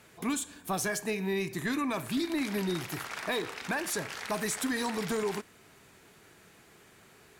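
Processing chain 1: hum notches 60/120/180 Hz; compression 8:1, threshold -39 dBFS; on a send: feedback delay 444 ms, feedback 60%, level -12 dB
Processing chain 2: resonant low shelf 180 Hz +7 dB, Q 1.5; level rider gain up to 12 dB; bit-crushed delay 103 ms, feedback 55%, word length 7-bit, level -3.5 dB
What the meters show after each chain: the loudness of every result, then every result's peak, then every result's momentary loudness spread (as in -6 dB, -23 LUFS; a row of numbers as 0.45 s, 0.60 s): -42.0 LUFS, -19.0 LUFS; -27.5 dBFS, -5.5 dBFS; 14 LU, 9 LU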